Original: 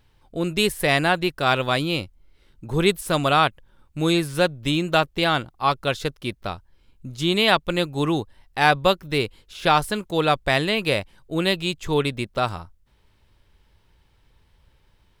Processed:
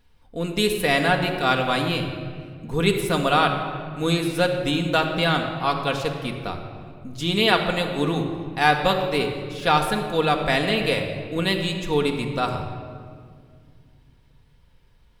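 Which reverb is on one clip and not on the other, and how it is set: shoebox room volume 3900 m³, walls mixed, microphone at 1.8 m; gain -2.5 dB

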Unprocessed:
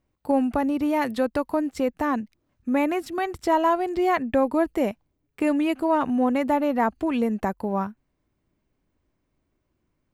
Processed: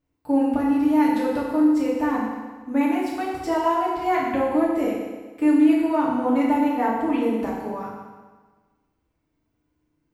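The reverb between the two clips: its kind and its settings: FDN reverb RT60 1.4 s, low-frequency decay 0.95×, high-frequency decay 0.9×, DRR -6.5 dB; gain -7.5 dB

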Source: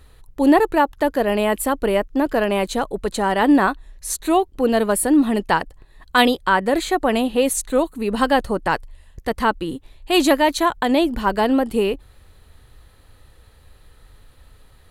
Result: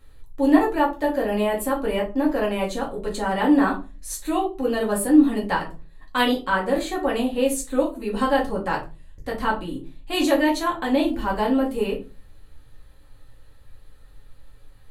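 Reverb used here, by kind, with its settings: shoebox room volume 130 m³, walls furnished, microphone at 2.2 m; gain -10 dB

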